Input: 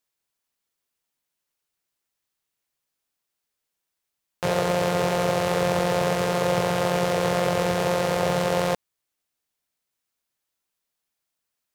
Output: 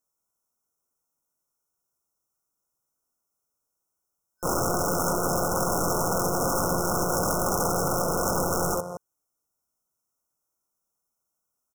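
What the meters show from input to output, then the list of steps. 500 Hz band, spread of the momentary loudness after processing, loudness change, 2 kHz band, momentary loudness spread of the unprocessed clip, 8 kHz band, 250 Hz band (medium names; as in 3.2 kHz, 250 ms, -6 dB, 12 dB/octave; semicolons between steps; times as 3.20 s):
-5.0 dB, 4 LU, -2.0 dB, -6.5 dB, 2 LU, +7.5 dB, -2.0 dB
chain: loudspeakers at several distances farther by 19 m -4 dB, 76 m -12 dB; integer overflow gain 18 dB; FFT band-reject 1.5–5.2 kHz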